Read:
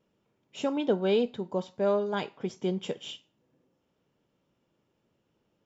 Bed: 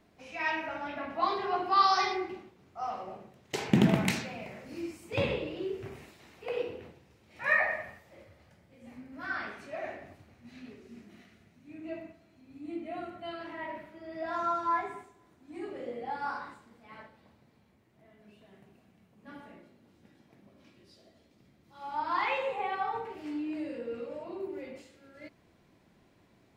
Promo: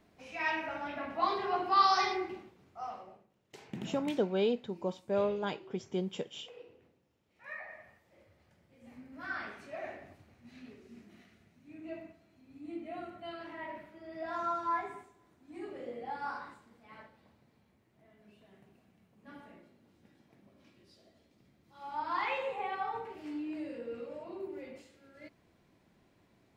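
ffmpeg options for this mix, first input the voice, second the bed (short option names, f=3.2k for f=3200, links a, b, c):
-filter_complex "[0:a]adelay=3300,volume=-4.5dB[a];[1:a]volume=13.5dB,afade=t=out:st=2.54:d=0.73:silence=0.141254,afade=t=in:st=7.63:d=1.43:silence=0.177828[b];[a][b]amix=inputs=2:normalize=0"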